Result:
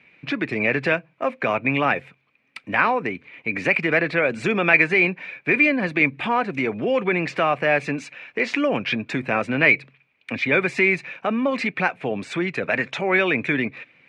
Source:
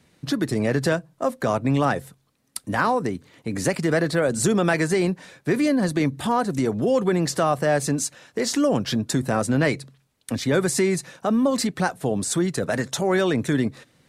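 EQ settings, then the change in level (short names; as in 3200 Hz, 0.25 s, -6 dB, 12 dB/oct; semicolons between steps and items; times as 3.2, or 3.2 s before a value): HPF 260 Hz 6 dB/oct; synth low-pass 2400 Hz, resonance Q 11; 0.0 dB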